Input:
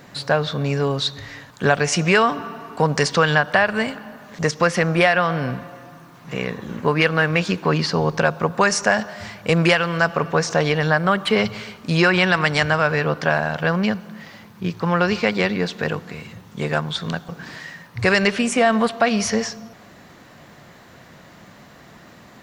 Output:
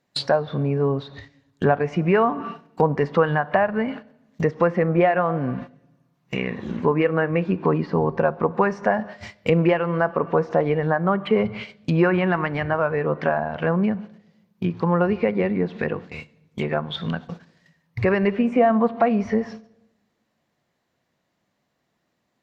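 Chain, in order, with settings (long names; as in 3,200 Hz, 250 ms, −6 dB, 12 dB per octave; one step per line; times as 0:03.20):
parametric band 1,400 Hz −4.5 dB 1 octave
noise gate −33 dBFS, range −27 dB
in parallel at +2 dB: downward compressor, threshold −29 dBFS, peak gain reduction 16 dB
on the sum: treble cut that deepens with the level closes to 1,200 Hz, closed at −15.5 dBFS
low-shelf EQ 200 Hz −4.5 dB
on a send at −18 dB: convolution reverb RT60 1.0 s, pre-delay 3 ms
on the sum: noise reduction from a noise print of the clip's start 6 dB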